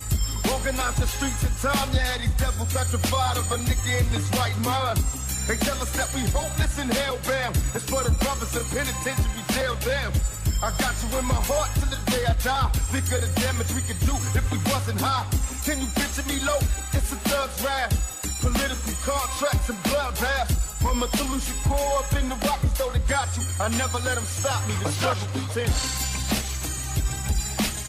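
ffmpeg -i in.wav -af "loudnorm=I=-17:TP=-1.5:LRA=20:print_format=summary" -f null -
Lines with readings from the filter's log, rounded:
Input Integrated:    -25.0 LUFS
Input True Peak:     -11.2 dBTP
Input LRA:             1.3 LU
Input Threshold:     -35.0 LUFS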